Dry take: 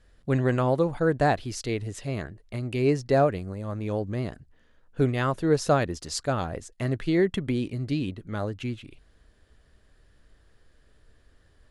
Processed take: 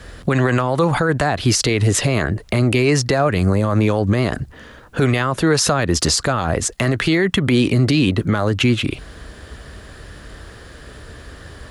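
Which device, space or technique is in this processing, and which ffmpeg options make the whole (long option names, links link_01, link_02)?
mastering chain: -filter_complex "[0:a]highpass=52,equalizer=frequency=1200:width_type=o:width=0.59:gain=2.5,acrossover=split=270|810[link_01][link_02][link_03];[link_01]acompressor=threshold=-36dB:ratio=4[link_04];[link_02]acompressor=threshold=-37dB:ratio=4[link_05];[link_03]acompressor=threshold=-32dB:ratio=4[link_06];[link_04][link_05][link_06]amix=inputs=3:normalize=0,acompressor=threshold=-39dB:ratio=1.5,asoftclip=type=hard:threshold=-23.5dB,alimiter=level_in=32dB:limit=-1dB:release=50:level=0:latency=1,volume=-6.5dB"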